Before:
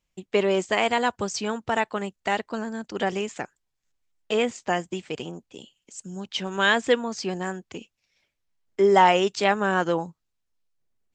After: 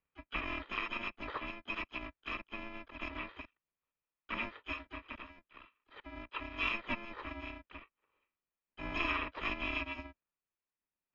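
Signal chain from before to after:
samples in bit-reversed order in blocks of 128 samples
single-sideband voice off tune −240 Hz 230–2,900 Hz
pitch-shifted copies added +4 semitones −11 dB
level −1.5 dB

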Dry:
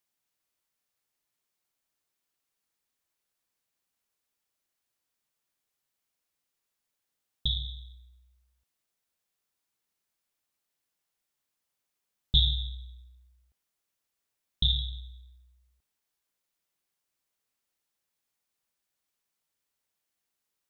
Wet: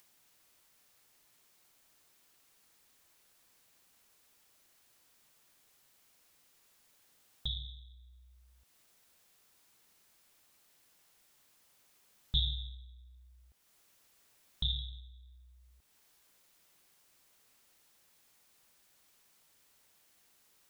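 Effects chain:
upward compression, threshold −40 dBFS
level −8 dB

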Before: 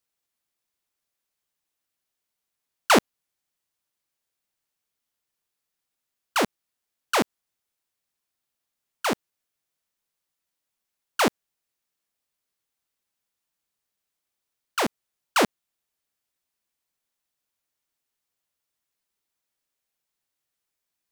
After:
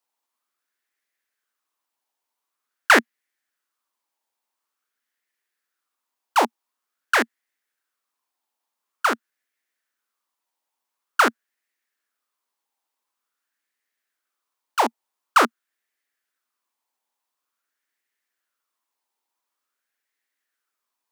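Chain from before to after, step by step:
Chebyshev high-pass filter 230 Hz, order 5
auto-filter bell 0.47 Hz 870–1,900 Hz +14 dB
level −1 dB

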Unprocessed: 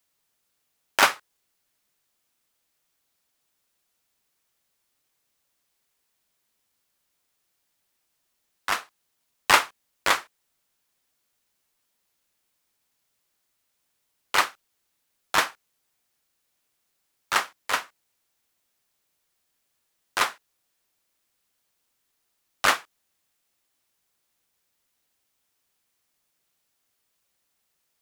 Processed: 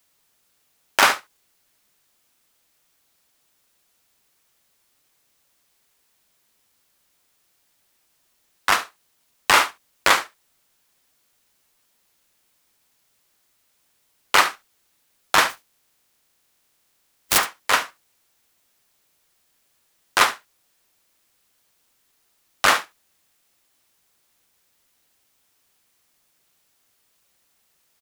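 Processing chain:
0:15.49–0:17.37: compressing power law on the bin magnitudes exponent 0.18
on a send: single-tap delay 71 ms −18 dB
on the sum: brickwall limiter −11 dBFS, peak gain reduction 9 dB
level +8.5 dB

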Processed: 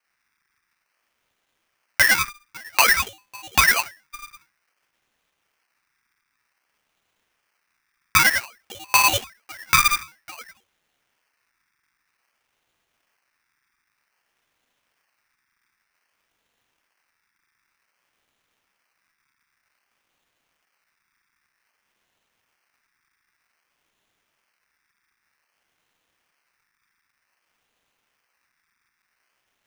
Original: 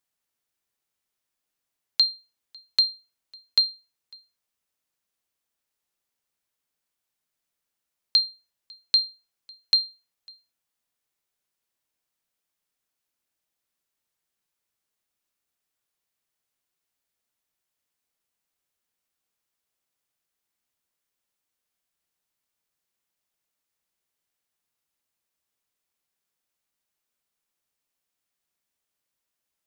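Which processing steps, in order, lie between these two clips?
downward compressor, threshold −20 dBFS, peak gain reduction 5 dB
reverb whose tail is shaped and stops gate 310 ms falling, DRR −6 dB
sample-and-hold swept by an LFO 25×, swing 100% 0.53 Hz
ring modulator with a square carrier 1,800 Hz
level +3 dB

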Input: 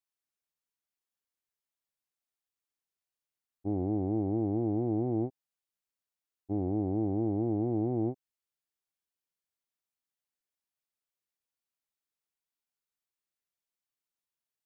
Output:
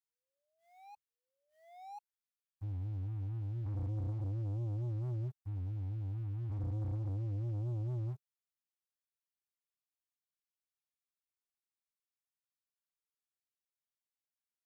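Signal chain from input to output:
brickwall limiter −24 dBFS, peak gain reduction 3.5 dB
flanger 1.3 Hz, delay 9.3 ms, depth 1.6 ms, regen −21%
sound drawn into the spectrogram rise, 0:00.97–0:01.99, 420–840 Hz −44 dBFS
elliptic band-stop filter 130–1,100 Hz, stop band 70 dB
backwards echo 1,037 ms −5.5 dB
leveller curve on the samples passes 3

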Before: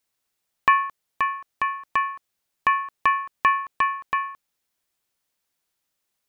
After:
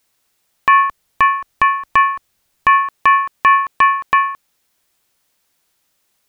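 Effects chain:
0:00.82–0:02.83: low-shelf EQ 100 Hz +11 dB
boost into a limiter +13.5 dB
level −1 dB

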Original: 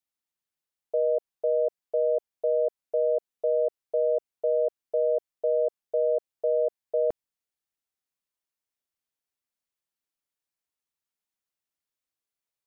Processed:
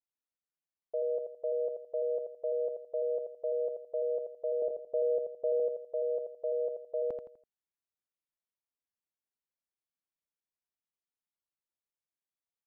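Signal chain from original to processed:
0:04.62–0:05.60: spectral tilt −3 dB per octave
repeating echo 83 ms, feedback 35%, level −6 dB
one half of a high-frequency compander decoder only
level −8 dB

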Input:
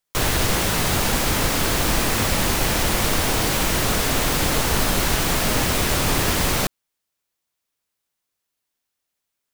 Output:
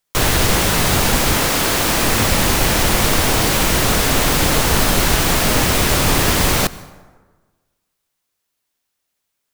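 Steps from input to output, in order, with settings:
0:01.37–0:02.03: low-shelf EQ 140 Hz −9 dB
dense smooth reverb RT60 1.4 s, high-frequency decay 0.55×, pre-delay 85 ms, DRR 18.5 dB
level +5 dB

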